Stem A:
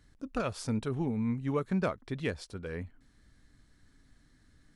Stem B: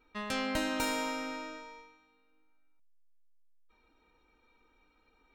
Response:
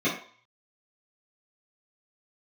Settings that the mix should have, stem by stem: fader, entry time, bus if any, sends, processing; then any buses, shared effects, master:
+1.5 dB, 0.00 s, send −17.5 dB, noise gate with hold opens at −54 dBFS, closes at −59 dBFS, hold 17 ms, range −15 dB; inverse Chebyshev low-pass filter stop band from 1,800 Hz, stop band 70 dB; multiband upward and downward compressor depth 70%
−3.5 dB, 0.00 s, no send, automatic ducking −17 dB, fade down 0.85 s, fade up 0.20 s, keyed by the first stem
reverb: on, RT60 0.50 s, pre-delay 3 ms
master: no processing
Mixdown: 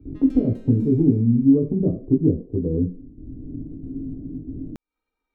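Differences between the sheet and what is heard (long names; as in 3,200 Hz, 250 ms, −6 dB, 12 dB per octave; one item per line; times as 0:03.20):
stem A +1.5 dB → +13.5 dB
stem B −3.5 dB → −14.5 dB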